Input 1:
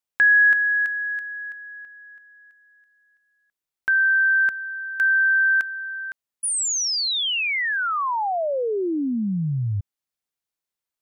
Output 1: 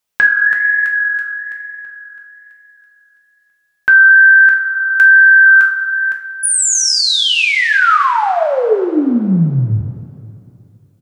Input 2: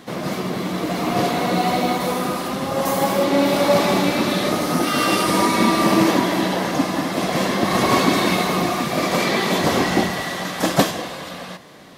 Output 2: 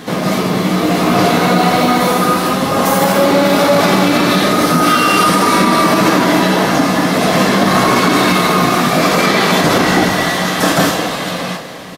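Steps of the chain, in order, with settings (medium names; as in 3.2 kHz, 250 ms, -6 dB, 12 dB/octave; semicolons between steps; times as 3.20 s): dynamic bell 1.4 kHz, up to +7 dB, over -35 dBFS, Q 3.7; in parallel at -0.5 dB: compression, threshold -30 dBFS; on the sum: flange 1.1 Hz, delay 2.2 ms, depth 5.9 ms, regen -85%; on a send: delay 188 ms -24 dB; on the sum: two-slope reverb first 0.37 s, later 2.7 s, from -16 dB, DRR 2 dB; loudness maximiser +10.5 dB; trim -1 dB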